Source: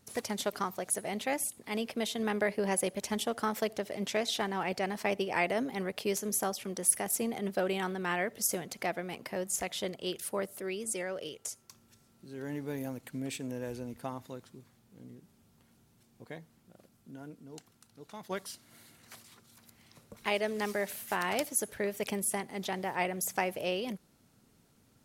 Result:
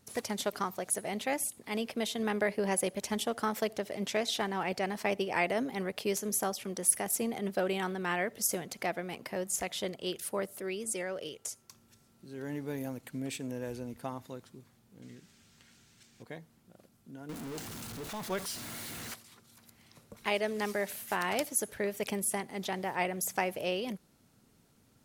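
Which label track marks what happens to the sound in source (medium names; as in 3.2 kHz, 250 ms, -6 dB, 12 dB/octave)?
15.020000	16.230000	high-order bell 3.4 kHz +11.5 dB 2.8 oct
17.290000	19.140000	jump at every zero crossing of -37.5 dBFS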